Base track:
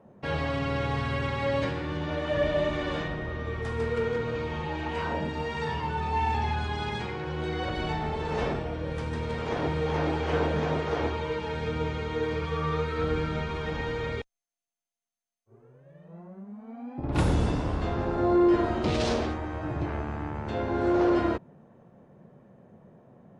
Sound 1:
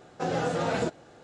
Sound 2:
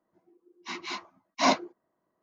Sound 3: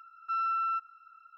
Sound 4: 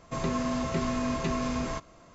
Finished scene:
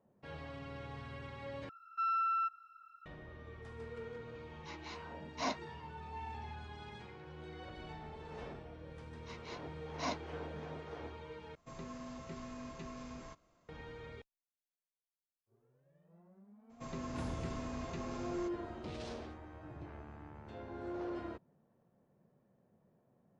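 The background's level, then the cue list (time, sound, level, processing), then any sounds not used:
base track -18 dB
1.69 s: replace with 3 -3 dB
3.99 s: add 2 -14 dB
8.60 s: add 2 -15.5 dB
11.55 s: replace with 4 -17.5 dB
16.69 s: add 4 -14 dB, fades 0.02 s
not used: 1

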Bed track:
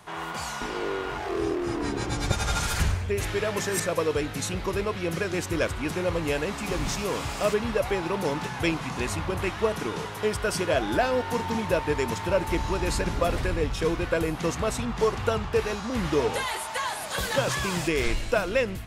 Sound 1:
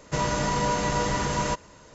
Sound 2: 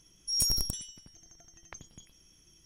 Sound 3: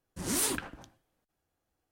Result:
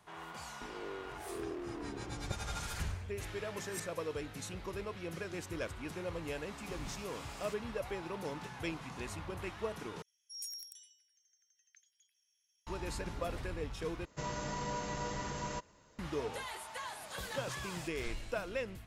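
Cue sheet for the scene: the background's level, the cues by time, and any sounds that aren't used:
bed track -13.5 dB
0.85 s: add 3 -14 dB + slow attack 437 ms
10.02 s: replace with 2 -16 dB + steep high-pass 1.5 kHz 72 dB/octave
14.05 s: replace with 1 -13.5 dB

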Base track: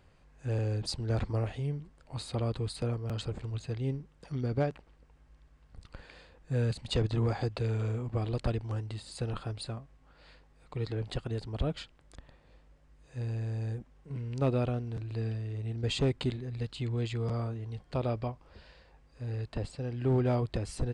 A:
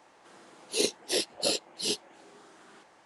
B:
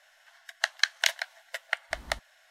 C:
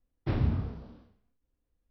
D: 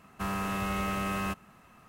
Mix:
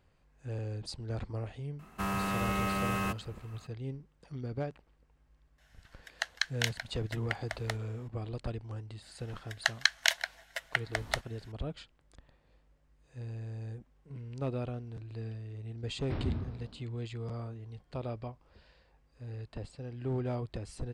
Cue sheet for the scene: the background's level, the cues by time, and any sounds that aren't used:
base track -6.5 dB
1.79 s: add D -0.5 dB
5.58 s: add B -7 dB
9.02 s: add B -1.5 dB
15.83 s: add C -6 dB
not used: A

